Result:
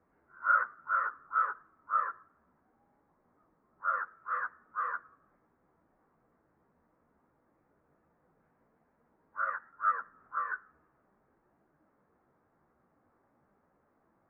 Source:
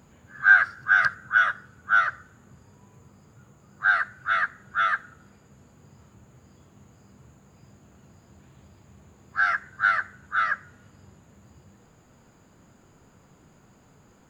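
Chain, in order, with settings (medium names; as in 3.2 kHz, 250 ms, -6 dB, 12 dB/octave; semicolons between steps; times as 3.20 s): chorus voices 4, 1.1 Hz, delay 16 ms, depth 3.9 ms; mistuned SSB -170 Hz 340–2000 Hz; trim -7 dB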